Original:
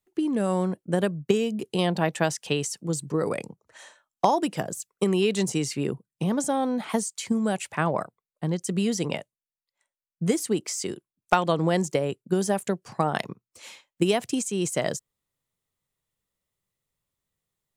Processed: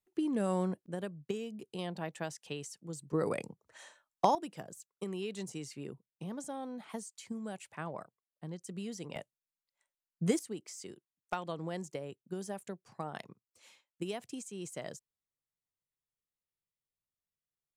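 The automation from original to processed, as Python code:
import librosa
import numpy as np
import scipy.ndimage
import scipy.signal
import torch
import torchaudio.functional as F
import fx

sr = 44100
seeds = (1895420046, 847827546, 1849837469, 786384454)

y = fx.gain(x, sr, db=fx.steps((0.0, -7.0), (0.86, -15.0), (3.13, -6.0), (4.35, -16.0), (9.16, -6.0), (10.39, -16.0)))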